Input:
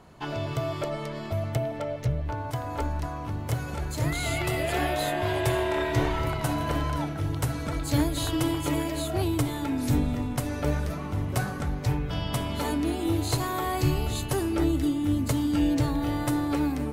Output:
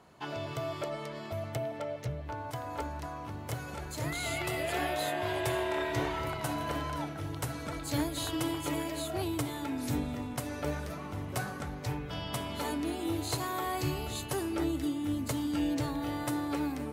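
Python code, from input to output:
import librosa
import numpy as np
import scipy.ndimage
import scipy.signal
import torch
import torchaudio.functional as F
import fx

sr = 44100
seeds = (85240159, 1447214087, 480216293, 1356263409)

y = scipy.signal.sosfilt(scipy.signal.butter(2, 54.0, 'highpass', fs=sr, output='sos'), x)
y = fx.low_shelf(y, sr, hz=230.0, db=-7.0)
y = F.gain(torch.from_numpy(y), -4.0).numpy()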